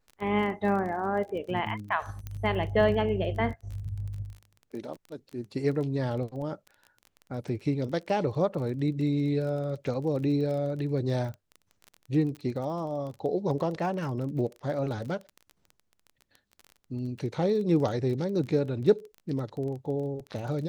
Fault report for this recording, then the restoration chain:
crackle 26 per s -36 dBFS
2.27 s: pop -23 dBFS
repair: de-click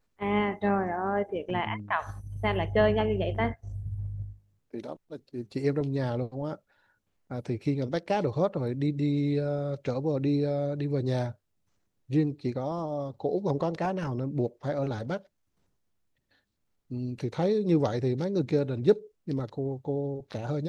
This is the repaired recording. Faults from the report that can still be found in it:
nothing left

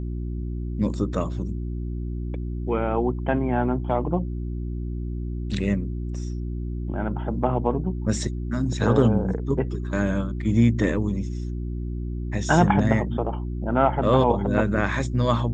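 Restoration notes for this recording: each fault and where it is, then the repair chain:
hum 60 Hz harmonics 6 -29 dBFS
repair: de-hum 60 Hz, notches 6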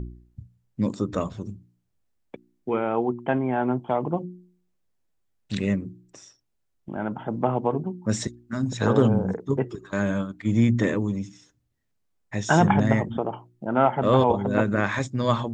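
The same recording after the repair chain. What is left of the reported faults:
nothing left

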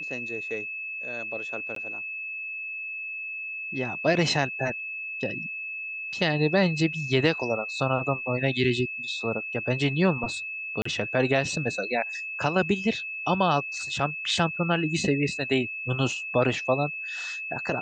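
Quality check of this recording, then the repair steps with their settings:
whine 2.6 kHz -32 dBFS
1.75–1.76 s: dropout 13 ms
10.82–10.85 s: dropout 34 ms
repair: band-stop 2.6 kHz, Q 30; interpolate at 1.75 s, 13 ms; interpolate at 10.82 s, 34 ms

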